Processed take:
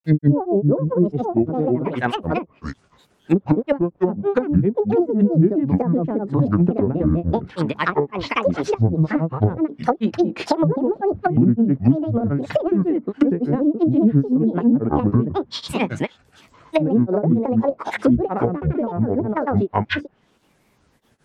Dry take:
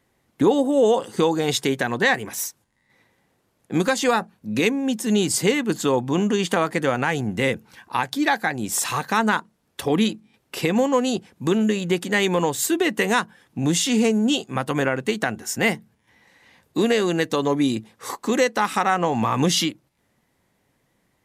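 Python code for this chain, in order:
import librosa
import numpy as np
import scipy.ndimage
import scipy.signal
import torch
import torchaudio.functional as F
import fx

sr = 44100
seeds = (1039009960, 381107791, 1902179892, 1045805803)

y = fx.granulator(x, sr, seeds[0], grain_ms=133.0, per_s=18.0, spray_ms=494.0, spread_st=12)
y = fx.env_lowpass_down(y, sr, base_hz=300.0, full_db=-19.5)
y = y * librosa.db_to_amplitude(9.0)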